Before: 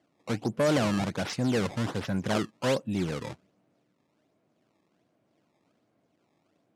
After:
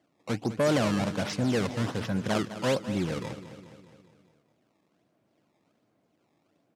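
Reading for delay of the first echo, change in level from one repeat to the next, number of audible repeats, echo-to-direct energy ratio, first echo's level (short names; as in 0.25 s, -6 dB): 0.206 s, -4.5 dB, 5, -11.0 dB, -13.0 dB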